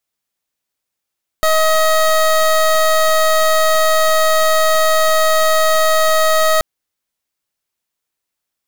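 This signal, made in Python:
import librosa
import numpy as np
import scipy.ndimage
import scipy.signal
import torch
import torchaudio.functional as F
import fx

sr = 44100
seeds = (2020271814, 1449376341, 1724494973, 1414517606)

y = fx.pulse(sr, length_s=5.18, hz=633.0, level_db=-12.5, duty_pct=23)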